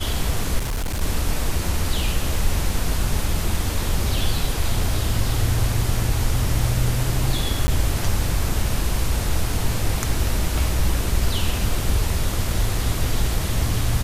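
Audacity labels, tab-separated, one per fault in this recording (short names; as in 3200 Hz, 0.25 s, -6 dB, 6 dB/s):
0.580000	1.010000	clipped -21 dBFS
7.670000	7.680000	gap 10 ms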